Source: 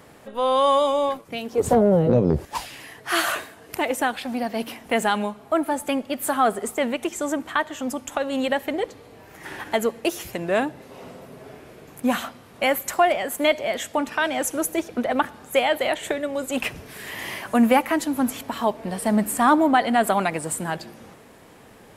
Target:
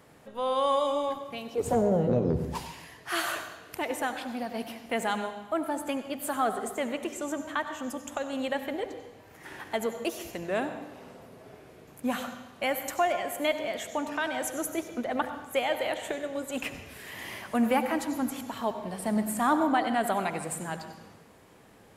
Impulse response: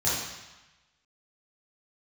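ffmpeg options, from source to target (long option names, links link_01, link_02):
-filter_complex "[0:a]asplit=2[link_01][link_02];[1:a]atrim=start_sample=2205,adelay=70[link_03];[link_02][link_03]afir=irnorm=-1:irlink=0,volume=-20dB[link_04];[link_01][link_04]amix=inputs=2:normalize=0,volume=-8dB"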